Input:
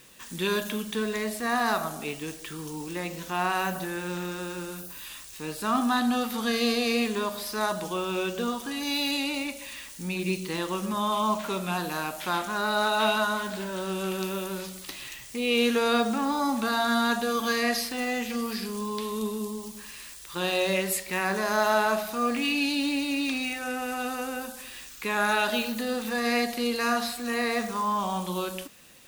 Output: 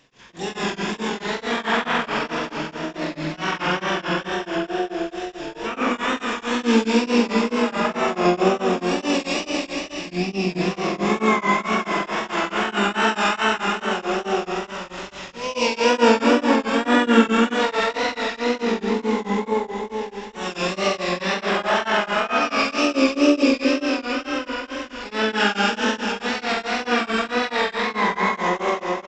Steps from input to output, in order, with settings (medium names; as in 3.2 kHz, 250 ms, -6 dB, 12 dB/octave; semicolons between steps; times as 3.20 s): band-stop 750 Hz, Q 18; spring tank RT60 3.9 s, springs 43 ms, chirp 60 ms, DRR -9 dB; wow and flutter 86 cents; resampled via 8 kHz; feedback delay 96 ms, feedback 29%, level -4.5 dB; harmony voices +4 st -15 dB, +7 st -17 dB, +12 st -4 dB; tremolo of two beating tones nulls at 4.6 Hz; trim -3.5 dB